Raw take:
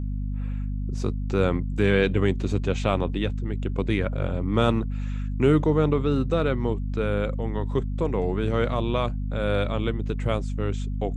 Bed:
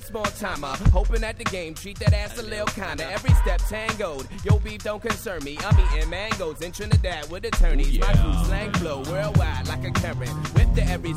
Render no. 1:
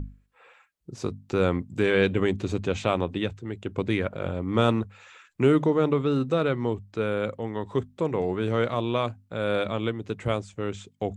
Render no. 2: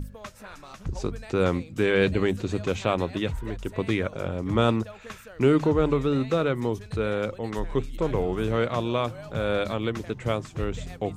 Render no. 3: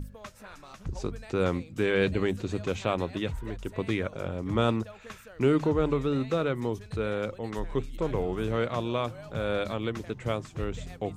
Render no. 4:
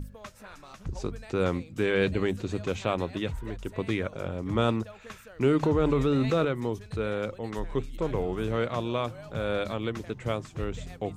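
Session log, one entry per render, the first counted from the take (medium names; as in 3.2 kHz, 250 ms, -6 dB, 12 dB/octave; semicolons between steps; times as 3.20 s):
hum notches 50/100/150/200/250 Hz
add bed -15.5 dB
trim -3.5 dB
5.63–6.45 s: level flattener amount 70%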